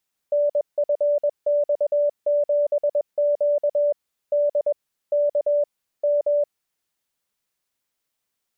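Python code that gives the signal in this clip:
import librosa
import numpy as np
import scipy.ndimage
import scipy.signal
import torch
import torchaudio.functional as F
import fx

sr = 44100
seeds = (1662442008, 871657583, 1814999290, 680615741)

y = fx.morse(sr, text='NFX7Q D K M', wpm=21, hz=584.0, level_db=-16.5)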